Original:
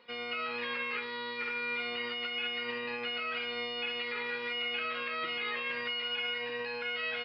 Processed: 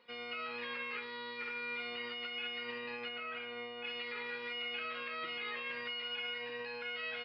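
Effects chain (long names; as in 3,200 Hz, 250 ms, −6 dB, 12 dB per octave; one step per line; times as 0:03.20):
0:03.08–0:03.83: low-pass filter 3,100 Hz → 2,100 Hz 12 dB per octave
level −5.5 dB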